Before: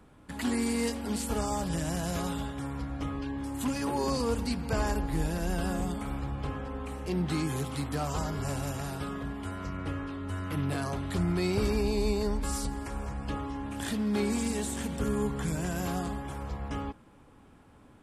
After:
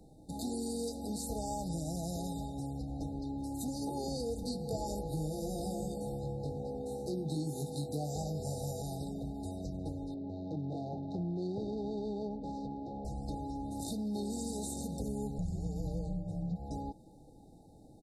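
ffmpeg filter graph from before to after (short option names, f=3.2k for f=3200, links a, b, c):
-filter_complex "[0:a]asettb=1/sr,asplit=3[a][b][c];[a]atrim=end=4.434[d];[b]atrim=start=4.43:end=8.82,asetpts=PTS-STARTPTS,afade=t=in:d=0.004:c=qsin,afade=t=out:st=4.386:d=0.004:c=qsin,aeval=exprs='val(0)+0.00794*sin(2*PI*490*n/s)':c=same,highpass=81,asplit=2[e][f];[f]adelay=20,volume=-2dB[g];[e][g]amix=inputs=2:normalize=0,atrim=end_sample=193599[h];[c]atrim=start=8.816[i];[d][h]acrossfade=d=0.004:c1=hsin:c2=qsin[j];[j][i]acrossfade=d=0.004:c1=qsin:c2=hsin,asettb=1/sr,asplit=3[k][l][m];[k]atrim=end=10.144[n];[l]atrim=start=10.14:end=13.05,asetpts=PTS-STARTPTS,afade=t=in:d=0.004:c=qsin,afade=t=out:st=2.906:d=0.004:c=qsin,adynamicsmooth=sensitivity=6:basefreq=730,highpass=140,lowpass=5k[o];[m]atrim=start=13.046[p];[n][o]acrossfade=d=0.004:c1=hsin:c2=qsin[q];[q][p]acrossfade=d=0.004:c1=qsin:c2=hsin,asettb=1/sr,asplit=3[r][s][t];[r]atrim=end=15.384[u];[s]atrim=start=15.38:end=16.56,asetpts=PTS-STARTPTS,afade=t=in:d=0.004:c=qsin,afade=t=out:st=1.176:d=0.004:c=qsin,highpass=f=120:p=1,aemphasis=mode=reproduction:type=bsi,afreqshift=-240[v];[t]atrim=start=16.556[w];[u][v]acrossfade=d=0.004:c1=hsin:c2=qsin[x];[x][w]acrossfade=d=0.004:c1=qsin:c2=hsin,aecho=1:1:6.2:0.31,afftfilt=real='re*(1-between(b*sr/4096,860,3600))':imag='im*(1-between(b*sr/4096,860,3600))':win_size=4096:overlap=0.75,acompressor=threshold=-37dB:ratio=2.5"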